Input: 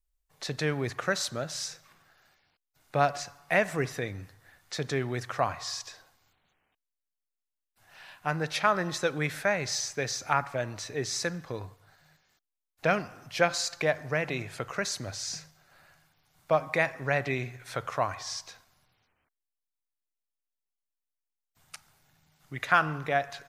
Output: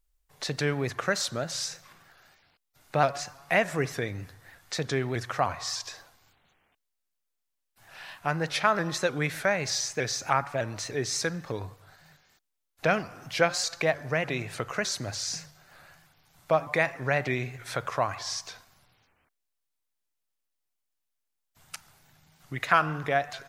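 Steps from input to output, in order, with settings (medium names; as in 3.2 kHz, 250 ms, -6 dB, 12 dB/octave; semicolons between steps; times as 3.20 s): in parallel at -1 dB: compression, threshold -40 dBFS, peak gain reduction 21 dB; on the sum: vibrato with a chosen wave saw up 3.3 Hz, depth 100 cents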